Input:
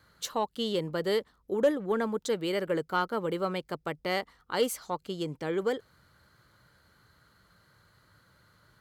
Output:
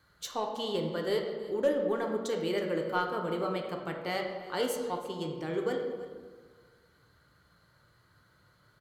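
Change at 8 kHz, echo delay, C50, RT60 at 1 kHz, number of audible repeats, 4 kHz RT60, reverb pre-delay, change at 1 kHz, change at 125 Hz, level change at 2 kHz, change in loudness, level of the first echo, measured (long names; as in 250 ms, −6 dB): −4.0 dB, 323 ms, 4.5 dB, 1.4 s, 1, 1.0 s, 3 ms, −1.5 dB, −1.5 dB, −2.0 dB, −1.5 dB, −17.5 dB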